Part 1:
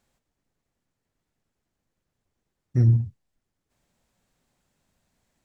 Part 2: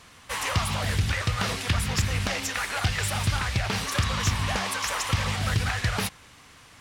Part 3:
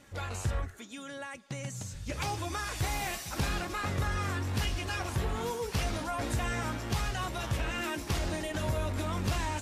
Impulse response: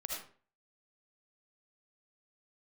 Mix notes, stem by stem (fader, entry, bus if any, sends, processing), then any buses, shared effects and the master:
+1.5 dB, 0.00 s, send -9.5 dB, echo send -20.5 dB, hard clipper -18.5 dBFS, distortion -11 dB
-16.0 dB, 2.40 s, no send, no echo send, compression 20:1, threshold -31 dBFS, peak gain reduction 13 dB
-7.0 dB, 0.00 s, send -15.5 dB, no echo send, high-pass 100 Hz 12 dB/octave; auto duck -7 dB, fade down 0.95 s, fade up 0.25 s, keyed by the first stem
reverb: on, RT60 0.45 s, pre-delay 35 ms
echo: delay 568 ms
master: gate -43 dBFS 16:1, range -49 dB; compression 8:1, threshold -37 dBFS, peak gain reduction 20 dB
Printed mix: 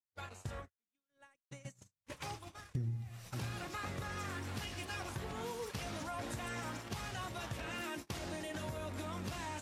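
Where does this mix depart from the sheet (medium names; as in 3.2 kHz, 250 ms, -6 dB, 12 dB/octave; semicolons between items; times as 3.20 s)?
stem 1: missing hard clipper -18.5 dBFS, distortion -11 dB; stem 2: entry 2.40 s -> 1.75 s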